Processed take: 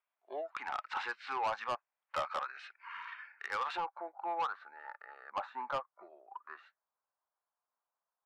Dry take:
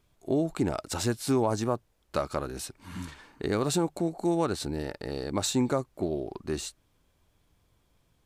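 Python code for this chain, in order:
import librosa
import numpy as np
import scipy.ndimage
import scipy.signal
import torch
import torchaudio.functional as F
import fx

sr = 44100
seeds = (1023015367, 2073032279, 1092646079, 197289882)

y = scipy.signal.sosfilt(scipy.signal.butter(4, 740.0, 'highpass', fs=sr, output='sos'), x)
y = fx.noise_reduce_blind(y, sr, reduce_db=17)
y = fx.lowpass(y, sr, hz=fx.steps((0.0, 2500.0), (3.78, 1400.0)), slope=24)
y = 10.0 ** (-33.5 / 20.0) * np.tanh(y / 10.0 ** (-33.5 / 20.0))
y = y * librosa.db_to_amplitude(5.0)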